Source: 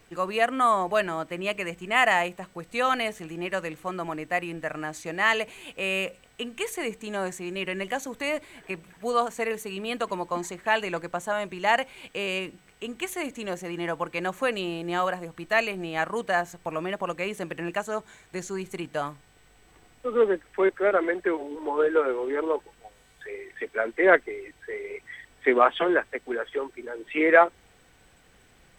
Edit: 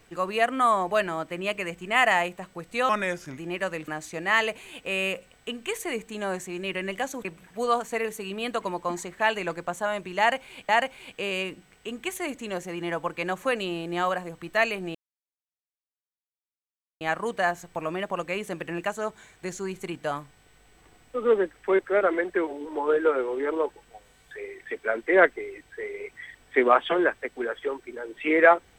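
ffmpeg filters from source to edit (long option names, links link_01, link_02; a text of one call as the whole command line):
ffmpeg -i in.wav -filter_complex "[0:a]asplit=7[link_01][link_02][link_03][link_04][link_05][link_06][link_07];[link_01]atrim=end=2.894[link_08];[link_02]atrim=start=2.89:end=3.29,asetpts=PTS-STARTPTS,asetrate=36162,aresample=44100,atrim=end_sample=21512,asetpts=PTS-STARTPTS[link_09];[link_03]atrim=start=3.286:end=3.792[link_10];[link_04]atrim=start=4.798:end=8.172[link_11];[link_05]atrim=start=8.708:end=12.152[link_12];[link_06]atrim=start=11.648:end=15.91,asetpts=PTS-STARTPTS,afade=type=out:start_time=4.258:duration=0.004:curve=hsin,apad=pad_dur=2.06[link_13];[link_07]atrim=start=15.91,asetpts=PTS-STARTPTS,afade=type=in:duration=0.004:curve=hsin[link_14];[link_08][link_09]acrossfade=duration=0.004:curve1=hsin:curve2=hsin[link_15];[link_15][link_10]acrossfade=duration=0.004:curve1=hsin:curve2=hsin[link_16];[link_16][link_11]acrossfade=duration=0.004:curve1=hsin:curve2=hsin[link_17];[link_17][link_12]acrossfade=duration=0.004:curve1=hsin:curve2=hsin[link_18];[link_13][link_14]concat=n=2:v=0:a=1[link_19];[link_18][link_19]acrossfade=duration=0.004:curve1=hsin:curve2=hsin" out.wav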